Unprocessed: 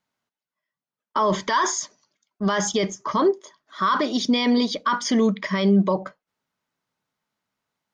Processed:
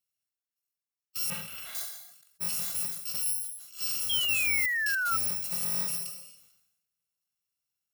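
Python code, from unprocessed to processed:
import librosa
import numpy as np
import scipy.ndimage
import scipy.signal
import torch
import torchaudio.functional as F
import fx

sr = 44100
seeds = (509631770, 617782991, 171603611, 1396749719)

y = fx.bit_reversed(x, sr, seeds[0], block=128)
y = fx.rev_gated(y, sr, seeds[1], gate_ms=300, shape='falling', drr_db=10.5)
y = fx.level_steps(y, sr, step_db=22, at=(4.48, 5.05), fade=0.02)
y = np.clip(10.0 ** (25.0 / 20.0) * y, -1.0, 1.0) / 10.0 ** (25.0 / 20.0)
y = fx.tilt_eq(y, sr, slope=1.5)
y = fx.hpss(y, sr, part='percussive', gain_db=-6)
y = fx.high_shelf_res(y, sr, hz=3900.0, db=-11.0, q=1.5, at=(1.3, 1.75))
y = fx.spec_paint(y, sr, seeds[2], shape='fall', start_s=4.09, length_s=1.08, low_hz=1300.0, high_hz=3300.0, level_db=-21.0)
y = fx.sustainer(y, sr, db_per_s=61.0)
y = y * librosa.db_to_amplitude(-8.0)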